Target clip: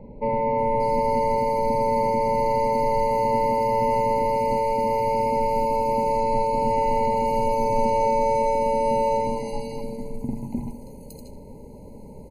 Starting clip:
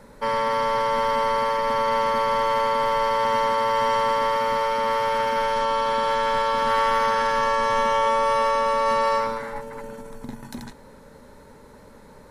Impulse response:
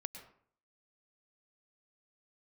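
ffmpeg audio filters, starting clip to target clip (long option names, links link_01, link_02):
-filter_complex "[0:a]crystalizer=i=2:c=0,tiltshelf=frequency=750:gain=9,acrossover=split=2900[link_01][link_02];[link_02]adelay=580[link_03];[link_01][link_03]amix=inputs=2:normalize=0,asplit=2[link_04][link_05];[1:a]atrim=start_sample=2205,adelay=77[link_06];[link_05][link_06]afir=irnorm=-1:irlink=0,volume=-10dB[link_07];[link_04][link_07]amix=inputs=2:normalize=0,afftfilt=real='re*eq(mod(floor(b*sr/1024/1000),2),0)':imag='im*eq(mod(floor(b*sr/1024/1000),2),0)':win_size=1024:overlap=0.75"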